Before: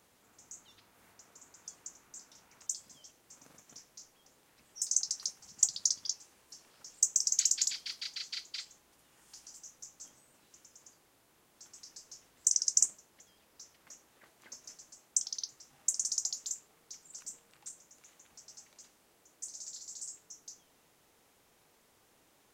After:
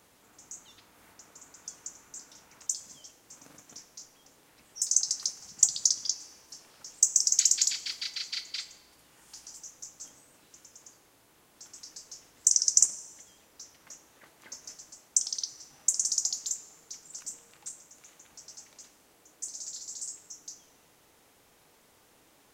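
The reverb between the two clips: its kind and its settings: FDN reverb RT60 1.6 s, high-frequency decay 0.65×, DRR 12 dB; trim +5 dB

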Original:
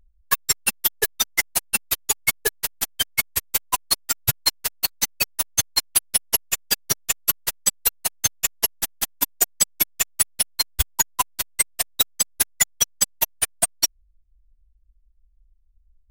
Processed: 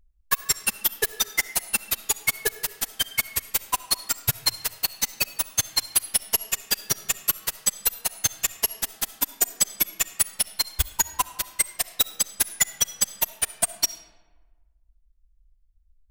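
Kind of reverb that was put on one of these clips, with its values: algorithmic reverb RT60 1.3 s, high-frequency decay 0.6×, pre-delay 25 ms, DRR 13.5 dB; trim -2.5 dB

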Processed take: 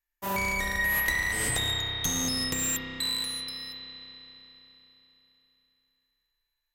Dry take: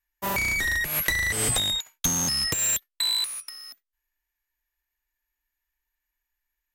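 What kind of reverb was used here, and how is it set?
spring tank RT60 3.9 s, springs 31 ms, chirp 40 ms, DRR -1 dB; trim -5.5 dB

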